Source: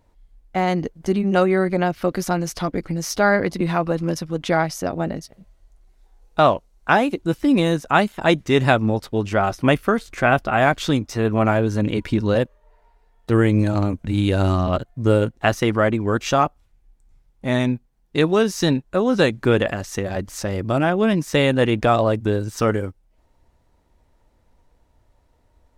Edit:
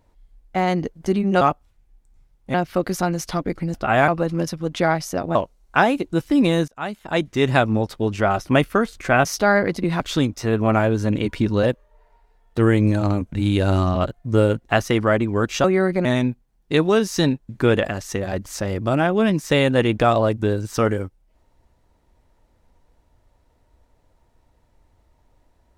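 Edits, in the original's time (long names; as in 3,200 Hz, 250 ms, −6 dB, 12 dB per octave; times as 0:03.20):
0:01.41–0:01.82: swap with 0:16.36–0:17.49
0:03.02–0:03.77: swap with 0:10.38–0:10.72
0:05.04–0:06.48: remove
0:07.81–0:09.08: fade in equal-power, from −24 dB
0:18.93–0:19.32: remove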